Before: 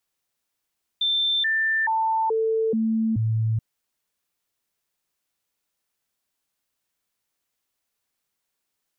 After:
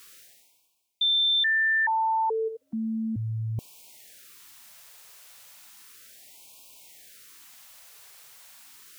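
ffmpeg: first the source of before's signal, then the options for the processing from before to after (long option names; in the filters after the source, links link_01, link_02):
-f lavfi -i "aevalsrc='0.106*clip(min(mod(t,0.43),0.43-mod(t,0.43))/0.005,0,1)*sin(2*PI*3560*pow(2,-floor(t/0.43)/1)*mod(t,0.43))':duration=2.58:sample_rate=44100"
-af "lowshelf=frequency=460:gain=-9,areverse,acompressor=mode=upward:threshold=-27dB:ratio=2.5,areverse,afftfilt=real='re*(1-between(b*sr/1024,260*pow(1600/260,0.5+0.5*sin(2*PI*0.34*pts/sr))/1.41,260*pow(1600/260,0.5+0.5*sin(2*PI*0.34*pts/sr))*1.41))':imag='im*(1-between(b*sr/1024,260*pow(1600/260,0.5+0.5*sin(2*PI*0.34*pts/sr))/1.41,260*pow(1600/260,0.5+0.5*sin(2*PI*0.34*pts/sr))*1.41))':win_size=1024:overlap=0.75"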